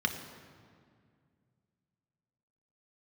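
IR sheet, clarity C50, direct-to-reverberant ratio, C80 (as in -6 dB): 8.5 dB, 4.5 dB, 9.5 dB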